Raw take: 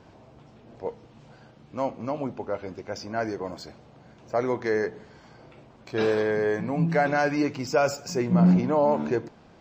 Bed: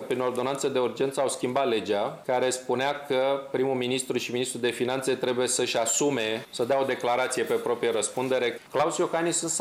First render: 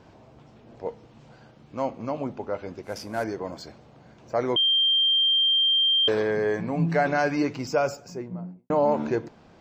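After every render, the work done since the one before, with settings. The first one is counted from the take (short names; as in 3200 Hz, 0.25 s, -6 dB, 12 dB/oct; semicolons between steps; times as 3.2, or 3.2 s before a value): 2.83–3.24 CVSD 64 kbps; 4.56–6.08 bleep 3170 Hz -18 dBFS; 7.53–8.7 studio fade out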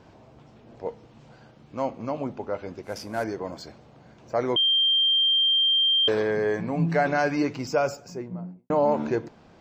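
nothing audible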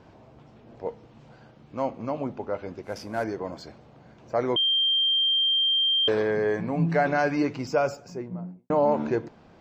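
high shelf 5400 Hz -7 dB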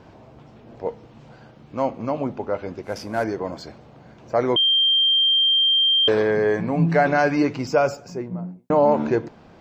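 gain +5 dB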